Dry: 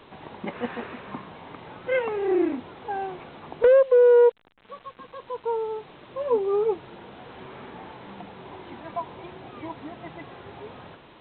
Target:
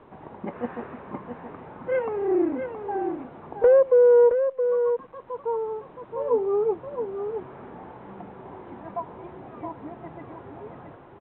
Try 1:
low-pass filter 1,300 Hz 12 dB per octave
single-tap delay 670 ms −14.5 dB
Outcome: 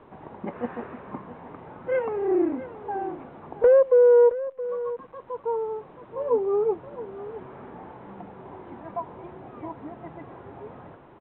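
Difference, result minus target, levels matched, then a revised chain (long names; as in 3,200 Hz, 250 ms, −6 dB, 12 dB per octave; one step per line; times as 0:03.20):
echo-to-direct −7 dB
low-pass filter 1,300 Hz 12 dB per octave
single-tap delay 670 ms −7.5 dB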